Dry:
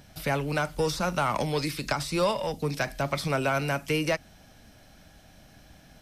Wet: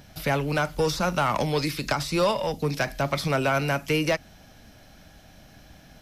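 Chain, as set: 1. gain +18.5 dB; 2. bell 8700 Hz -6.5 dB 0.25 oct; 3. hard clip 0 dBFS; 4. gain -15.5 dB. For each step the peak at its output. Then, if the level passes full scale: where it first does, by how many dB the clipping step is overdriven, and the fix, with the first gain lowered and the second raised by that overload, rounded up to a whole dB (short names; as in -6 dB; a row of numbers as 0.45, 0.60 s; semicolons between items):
+5.5, +5.5, 0.0, -15.5 dBFS; step 1, 5.5 dB; step 1 +12.5 dB, step 4 -9.5 dB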